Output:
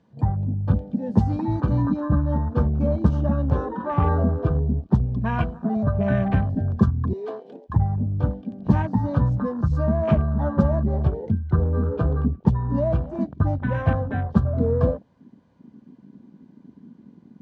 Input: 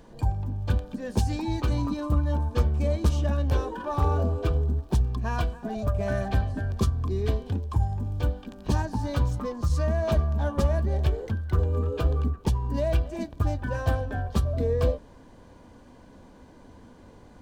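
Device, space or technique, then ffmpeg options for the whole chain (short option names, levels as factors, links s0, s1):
over-cleaned archive recording: -filter_complex "[0:a]asettb=1/sr,asplit=3[s0][s1][s2];[s0]atrim=end=7.134[s3];[s1]atrim=start=7.13:end=7.7,asetpts=PTS-STARTPTS,afade=t=in:d=0.004:c=qsin,afade=t=out:st=0.566:d=0.004:c=qsin,highpass=f=400:w=0.5412,highpass=f=400:w=1.3066[s4];[s2]atrim=start=7.696[s5];[s3][s4]acrossfade=d=0.004:c1=hsin:c2=qsin[s6];[s6][s5]acrossfade=d=0.004:c1=qsin:c2=hsin,highpass=130,lowpass=5100,afwtdn=0.0126,lowshelf=f=260:t=q:w=1.5:g=6.5,volume=1.68"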